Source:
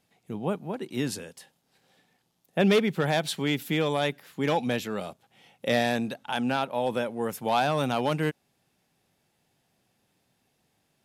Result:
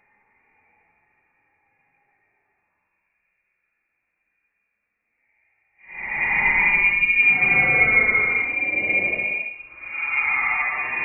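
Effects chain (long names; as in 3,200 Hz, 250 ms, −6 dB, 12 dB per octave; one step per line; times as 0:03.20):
voice inversion scrambler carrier 2,600 Hz
extreme stretch with random phases 9.5×, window 0.10 s, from 0:01.92
level +2.5 dB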